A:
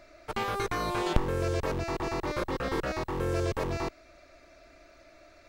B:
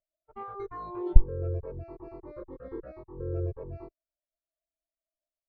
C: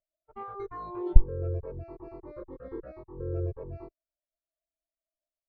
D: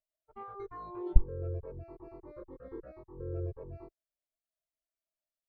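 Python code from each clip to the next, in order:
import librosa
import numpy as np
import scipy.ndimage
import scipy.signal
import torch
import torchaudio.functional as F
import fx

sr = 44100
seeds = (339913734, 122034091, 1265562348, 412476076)

y1 = fx.spectral_expand(x, sr, expansion=2.5)
y1 = y1 * librosa.db_to_amplitude(6.5)
y2 = y1
y3 = np.minimum(y2, 2.0 * 10.0 ** (-16.0 / 20.0) - y2)
y3 = y3 * librosa.db_to_amplitude(-5.0)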